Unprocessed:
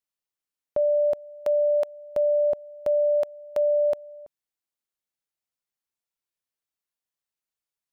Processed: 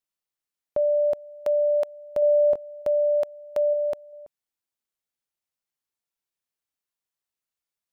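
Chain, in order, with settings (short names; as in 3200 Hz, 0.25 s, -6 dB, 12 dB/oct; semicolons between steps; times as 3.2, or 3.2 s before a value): 2.2–2.82 doubler 22 ms -7.5 dB; 3.73–4.13 bell 590 Hz -3.5 dB 0.33 oct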